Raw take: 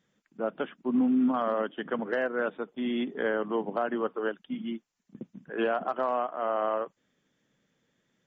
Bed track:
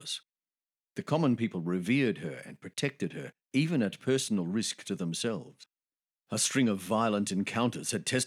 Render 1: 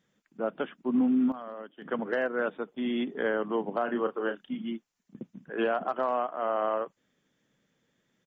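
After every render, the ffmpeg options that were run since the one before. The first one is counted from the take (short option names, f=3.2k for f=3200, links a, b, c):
-filter_complex "[0:a]asplit=3[a][b][c];[a]afade=t=out:st=3.83:d=0.02[d];[b]asplit=2[e][f];[f]adelay=33,volume=-8dB[g];[e][g]amix=inputs=2:normalize=0,afade=t=in:st=3.83:d=0.02,afade=t=out:st=4.53:d=0.02[h];[c]afade=t=in:st=4.53:d=0.02[i];[d][h][i]amix=inputs=3:normalize=0,asplit=3[j][k][l];[j]atrim=end=1.32,asetpts=PTS-STARTPTS,afade=t=out:st=1.08:d=0.24:c=log:silence=0.237137[m];[k]atrim=start=1.32:end=1.82,asetpts=PTS-STARTPTS,volume=-12.5dB[n];[l]atrim=start=1.82,asetpts=PTS-STARTPTS,afade=t=in:d=0.24:c=log:silence=0.237137[o];[m][n][o]concat=n=3:v=0:a=1"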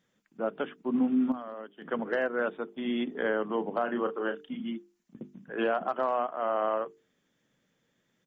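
-af "bandreject=f=50:t=h:w=6,bandreject=f=100:t=h:w=6,bandreject=f=150:t=h:w=6,bandreject=f=200:t=h:w=6,bandreject=f=250:t=h:w=6,bandreject=f=300:t=h:w=6,bandreject=f=350:t=h:w=6,bandreject=f=400:t=h:w=6,bandreject=f=450:t=h:w=6"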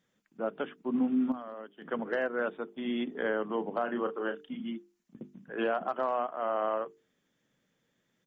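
-af "volume=-2dB"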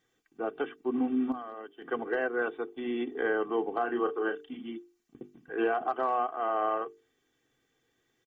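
-filter_complex "[0:a]acrossover=split=2700[a][b];[b]acompressor=threshold=-56dB:ratio=4:attack=1:release=60[c];[a][c]amix=inputs=2:normalize=0,aecho=1:1:2.6:0.81"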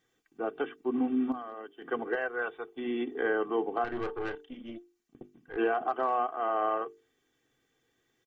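-filter_complex "[0:a]asettb=1/sr,asplit=3[a][b][c];[a]atrim=end=2.154[d];[b]atrim=start=2.15:end=2.76,asetpts=PTS-STARTPTS,afade=t=in:d=0.004:c=qsin,afade=t=out:st=0.606:d=0.004:c=qsin,equalizer=f=280:w=1.3:g=-13[e];[c]atrim=start=2.756[f];[d][e]acrossfade=d=0.004:c1=hsin:c2=qsin[g];[g][f]acrossfade=d=0.004:c1=qsin:c2=hsin,asettb=1/sr,asplit=3[h][i][j];[h]atrim=end=3.844[k];[i]atrim=start=3.84:end=5.57,asetpts=PTS-STARTPTS,afade=t=in:d=0.004:c=qsin,afade=t=out:st=1.726:d=0.004:c=qsin,aeval=exprs='(tanh(28.2*val(0)+0.65)-tanh(0.65))/28.2':c=same[l];[j]atrim=start=5.566[m];[k][l]acrossfade=d=0.004:c1=hsin:c2=qsin[n];[n][m]acrossfade=d=0.004:c1=qsin:c2=hsin"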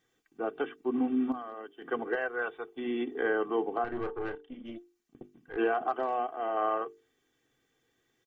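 -filter_complex "[0:a]asettb=1/sr,asplit=3[a][b][c];[a]atrim=end=3.774[d];[b]atrim=start=3.77:end=4.65,asetpts=PTS-STARTPTS,afade=t=in:d=0.004:c=qsin,afade=t=out:st=0.876:d=0.004:c=qsin,lowpass=f=1.8k:p=1[e];[c]atrim=start=4.646[f];[d][e]acrossfade=d=0.004:c1=hsin:c2=qsin[g];[g][f]acrossfade=d=0.004:c1=qsin:c2=hsin,asettb=1/sr,asplit=3[h][i][j];[h]atrim=end=5.994[k];[i]atrim=start=5.99:end=6.57,asetpts=PTS-STARTPTS,afade=t=in:d=0.004:c=qsin,afade=t=out:st=0.576:d=0.004:c=qsin,equalizer=f=1.2k:w=2.3:g=-7.5[l];[j]atrim=start=6.566[m];[k][l]acrossfade=d=0.004:c1=hsin:c2=qsin[n];[n][m]acrossfade=d=0.004:c1=qsin:c2=hsin"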